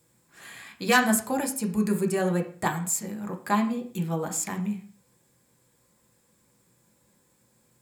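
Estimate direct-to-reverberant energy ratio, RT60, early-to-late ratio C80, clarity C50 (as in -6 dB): 3.0 dB, 0.45 s, 15.0 dB, 10.5 dB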